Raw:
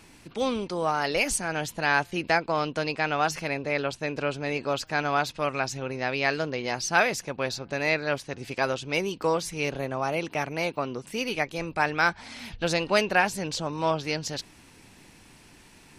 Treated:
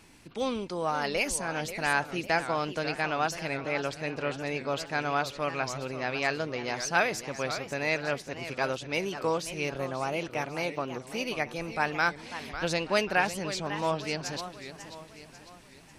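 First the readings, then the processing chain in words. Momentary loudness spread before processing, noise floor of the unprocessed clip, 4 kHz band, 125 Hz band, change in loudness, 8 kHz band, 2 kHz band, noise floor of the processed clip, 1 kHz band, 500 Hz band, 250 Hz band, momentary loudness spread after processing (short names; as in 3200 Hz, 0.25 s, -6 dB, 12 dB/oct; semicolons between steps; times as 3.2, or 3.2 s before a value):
7 LU, -53 dBFS, -3.0 dB, -3.0 dB, -3.0 dB, -3.0 dB, -3.0 dB, -52 dBFS, -3.0 dB, -3.0 dB, -3.0 dB, 9 LU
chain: warbling echo 0.544 s, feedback 47%, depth 214 cents, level -11.5 dB; gain -3.5 dB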